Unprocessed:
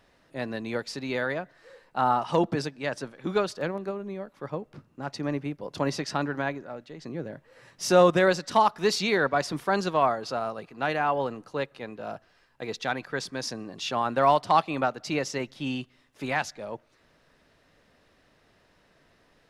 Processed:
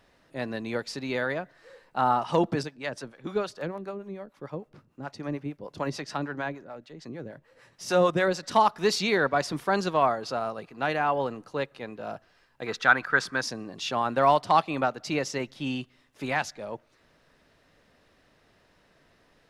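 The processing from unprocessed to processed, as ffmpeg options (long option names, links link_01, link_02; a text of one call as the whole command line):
ffmpeg -i in.wav -filter_complex "[0:a]asettb=1/sr,asplit=3[link_01][link_02][link_03];[link_01]atrim=end=2.634[link_04];[link_02]atrim=start=2.63:end=8.43,asetpts=PTS-STARTPTS,afade=type=in:duration=0.004:curve=qsin,afade=type=out:start_time=5.796:duration=0.004:curve=qsin,acrossover=split=530[link_05][link_06];[link_05]aeval=exprs='val(0)*(1-0.7/2+0.7/2*cos(2*PI*6.7*n/s))':channel_layout=same[link_07];[link_06]aeval=exprs='val(0)*(1-0.7/2-0.7/2*cos(2*PI*6.7*n/s))':channel_layout=same[link_08];[link_07][link_08]amix=inputs=2:normalize=0[link_09];[link_03]atrim=start=8.426[link_10];[link_04][link_09]acrossfade=duration=0.004:curve1=hsin:curve2=qsin[link_11];[link_11][link_10]acrossfade=duration=0.004:curve1=qsin:curve2=hsin,asettb=1/sr,asplit=3[link_12][link_13][link_14];[link_12]atrim=end=12.664[link_15];[link_13]atrim=start=12.66:end=13.42,asetpts=PTS-STARTPTS,afade=type=in:duration=0.004:curve=qsin,afade=type=out:start_time=0.756:duration=0.004:curve=qsin,equalizer=frequency=1400:width=1.6:gain=14.5[link_16];[link_14]atrim=start=13.416[link_17];[link_15][link_16]acrossfade=duration=0.004:curve1=hsin:curve2=qsin[link_18];[link_18][link_17]acrossfade=duration=0.004:curve1=qsin:curve2=hsin" out.wav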